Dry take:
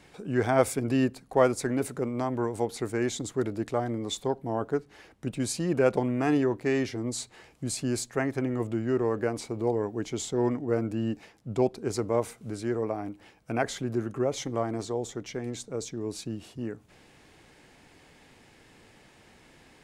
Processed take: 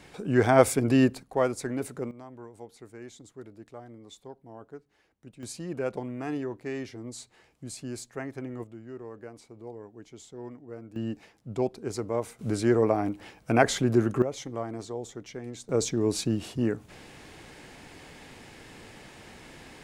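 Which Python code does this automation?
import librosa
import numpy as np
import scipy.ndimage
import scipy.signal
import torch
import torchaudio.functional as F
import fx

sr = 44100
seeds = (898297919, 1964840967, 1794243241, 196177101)

y = fx.gain(x, sr, db=fx.steps((0.0, 4.0), (1.23, -3.5), (2.11, -16.0), (5.43, -8.0), (8.64, -15.0), (10.96, -3.0), (12.39, 7.0), (14.22, -4.5), (15.69, 8.0)))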